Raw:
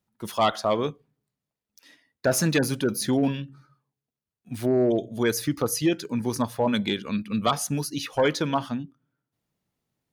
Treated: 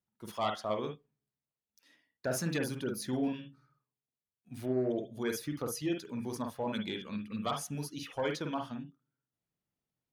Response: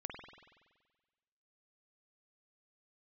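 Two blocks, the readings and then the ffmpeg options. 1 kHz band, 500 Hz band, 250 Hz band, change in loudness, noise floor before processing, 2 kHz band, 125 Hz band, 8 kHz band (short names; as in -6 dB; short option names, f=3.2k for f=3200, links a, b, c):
-10.5 dB, -10.5 dB, -10.0 dB, -10.5 dB, under -85 dBFS, -10.5 dB, -10.5 dB, -12.0 dB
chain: -filter_complex "[1:a]atrim=start_sample=2205,atrim=end_sample=3528[a];[0:a][a]afir=irnorm=-1:irlink=0,volume=-7.5dB"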